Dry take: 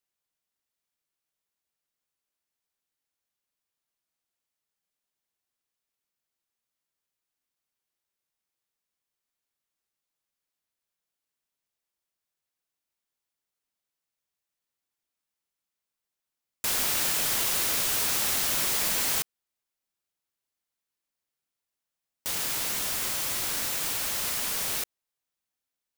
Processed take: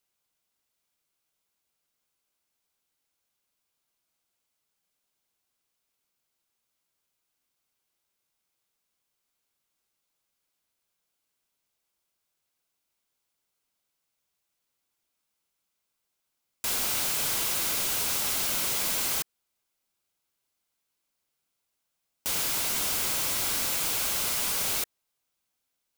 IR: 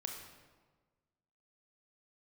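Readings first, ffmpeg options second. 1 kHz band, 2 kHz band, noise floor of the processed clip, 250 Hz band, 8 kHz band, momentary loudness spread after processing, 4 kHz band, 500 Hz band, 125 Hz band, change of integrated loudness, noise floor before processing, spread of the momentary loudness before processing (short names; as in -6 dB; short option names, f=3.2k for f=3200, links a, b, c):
-0.5 dB, -1.0 dB, -81 dBFS, 0.0 dB, -0.5 dB, 5 LU, -0.5 dB, -0.5 dB, 0.0 dB, -0.5 dB, under -85 dBFS, 6 LU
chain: -af "alimiter=limit=-20.5dB:level=0:latency=1:release=59,asoftclip=type=hard:threshold=-32.5dB,bandreject=f=1.8k:w=11,volume=6.5dB"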